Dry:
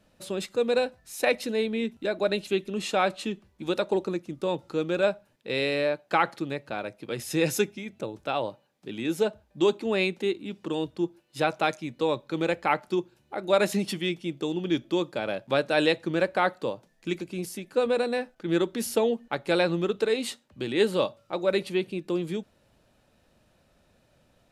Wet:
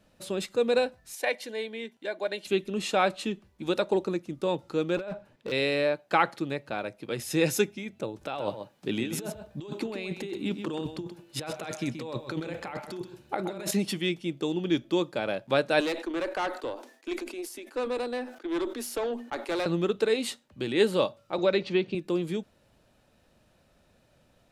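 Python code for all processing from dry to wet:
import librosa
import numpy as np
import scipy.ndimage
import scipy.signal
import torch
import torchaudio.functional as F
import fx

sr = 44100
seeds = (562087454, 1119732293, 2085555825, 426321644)

y = fx.chain(x, sr, fx.highpass(hz=870.0, slope=6),
    fx.high_shelf(hz=5000.0, db=-4.5),
    fx.notch_comb(f0_hz=1300.0), at=(1.15, 2.45))
y = fx.chain(y, sr, fx.lowpass(hz=2600.0, slope=6),
    fx.over_compress(threshold_db=-33.0, ratio=-1.0),
    fx.overload_stage(gain_db=29.5), at=(4.97, 5.52))
y = fx.chain(y, sr, fx.over_compress(threshold_db=-34.0, ratio=-1.0),
    fx.echo_single(ms=129, db=-9.0), at=(8.21, 13.71))
y = fx.chain(y, sr, fx.cheby_ripple_highpass(hz=240.0, ripple_db=3),
    fx.tube_stage(drive_db=25.0, bias=0.25),
    fx.sustainer(db_per_s=110.0), at=(15.8, 19.66))
y = fx.chain(y, sr, fx.lowpass(hz=5700.0, slope=24),
    fx.band_squash(depth_pct=70), at=(21.38, 21.95))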